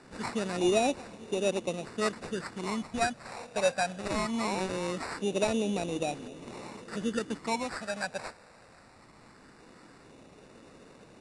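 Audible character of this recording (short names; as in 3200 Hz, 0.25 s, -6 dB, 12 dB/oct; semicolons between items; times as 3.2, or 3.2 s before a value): a quantiser's noise floor 10-bit, dither triangular; phasing stages 12, 0.21 Hz, lowest notch 330–1800 Hz; aliases and images of a low sample rate 3200 Hz, jitter 0%; Vorbis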